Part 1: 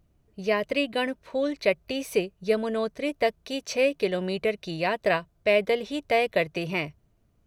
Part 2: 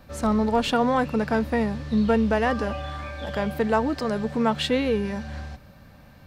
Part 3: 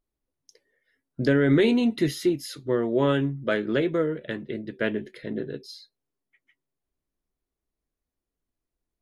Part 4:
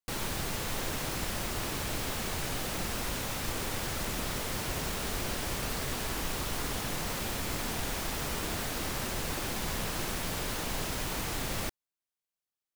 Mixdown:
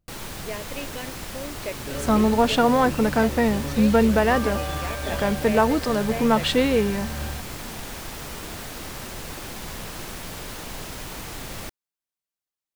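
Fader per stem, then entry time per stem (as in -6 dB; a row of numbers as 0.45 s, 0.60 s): -10.0 dB, +3.0 dB, -16.0 dB, -1.0 dB; 0.00 s, 1.85 s, 0.60 s, 0.00 s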